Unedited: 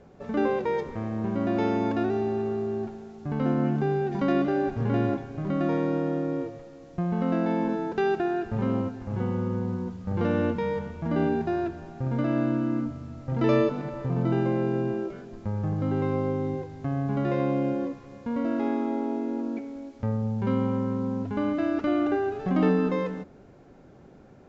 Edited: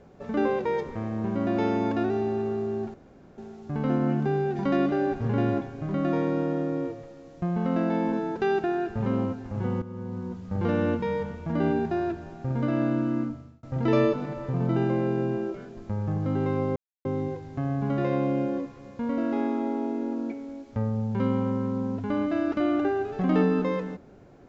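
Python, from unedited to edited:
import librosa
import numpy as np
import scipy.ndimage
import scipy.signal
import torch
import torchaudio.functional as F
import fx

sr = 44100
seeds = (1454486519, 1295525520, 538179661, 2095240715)

y = fx.edit(x, sr, fx.insert_room_tone(at_s=2.94, length_s=0.44),
    fx.fade_in_from(start_s=9.38, length_s=0.66, floor_db=-13.5),
    fx.fade_out_span(start_s=12.75, length_s=0.44),
    fx.insert_silence(at_s=16.32, length_s=0.29), tone=tone)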